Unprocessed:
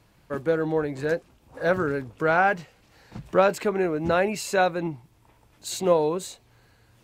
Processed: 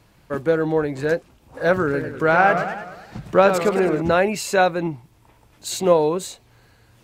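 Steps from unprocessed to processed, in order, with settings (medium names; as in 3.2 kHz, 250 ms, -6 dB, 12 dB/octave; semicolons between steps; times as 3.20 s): 1.82–4.02 s: modulated delay 105 ms, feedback 56%, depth 203 cents, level -8 dB; trim +4.5 dB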